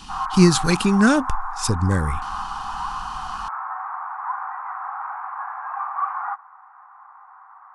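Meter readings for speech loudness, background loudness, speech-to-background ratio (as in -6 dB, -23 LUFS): -19.5 LUFS, -29.5 LUFS, 10.0 dB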